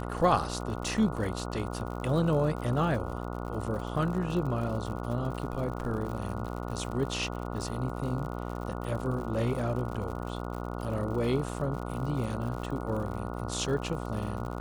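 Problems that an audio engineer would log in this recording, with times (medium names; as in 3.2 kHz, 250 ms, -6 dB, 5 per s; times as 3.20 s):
buzz 60 Hz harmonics 24 -36 dBFS
crackle 84 per s -37 dBFS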